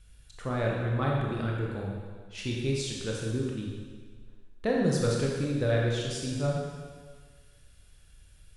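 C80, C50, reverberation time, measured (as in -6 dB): 2.0 dB, 0.0 dB, 1.6 s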